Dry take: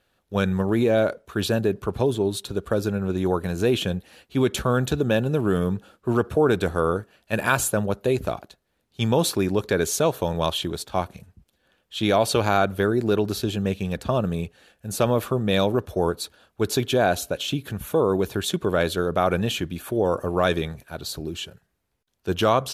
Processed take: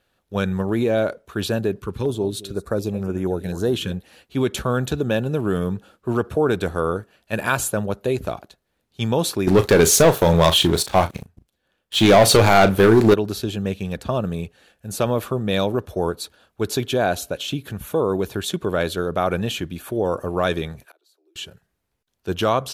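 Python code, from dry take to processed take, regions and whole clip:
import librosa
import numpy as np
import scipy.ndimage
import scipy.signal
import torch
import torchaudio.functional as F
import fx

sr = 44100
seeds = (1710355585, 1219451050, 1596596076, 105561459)

y = fx.chain(x, sr, fx.echo_single(ms=219, db=-16.5),
    fx.filter_held_notch(hz=4.1, low_hz=680.0, high_hz=4000.0), at=(1.81, 3.92))
y = fx.chain(y, sr, fx.leveller(passes=3),
    fx.doubler(ms=36.0, db=-11.5), at=(9.47, 13.14))
y = fx.chain(y, sr, fx.steep_highpass(hz=310.0, slope=96),
    fx.gate_flip(shuts_db=-35.0, range_db=-29), at=(20.85, 21.36))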